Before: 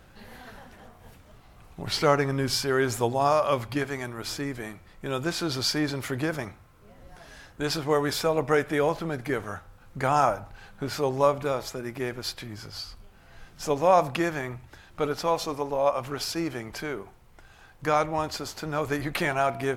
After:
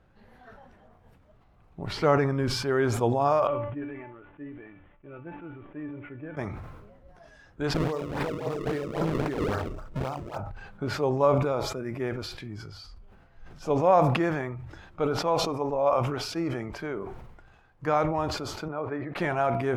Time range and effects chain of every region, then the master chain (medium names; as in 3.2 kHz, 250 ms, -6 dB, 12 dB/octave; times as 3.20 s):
3.47–6.37 s: CVSD coder 16 kbps + feedback comb 290 Hz, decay 0.39 s, mix 80%
7.74–10.38 s: feedback delay 62 ms, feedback 55%, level -6 dB + compressor with a negative ratio -30 dBFS, ratio -0.5 + decimation with a swept rate 32×, swing 160% 3.7 Hz
18.68–19.16 s: high-pass 400 Hz 6 dB/octave + tape spacing loss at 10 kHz 33 dB
whole clip: spectral noise reduction 8 dB; low-pass 1.4 kHz 6 dB/octave; decay stretcher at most 41 dB/s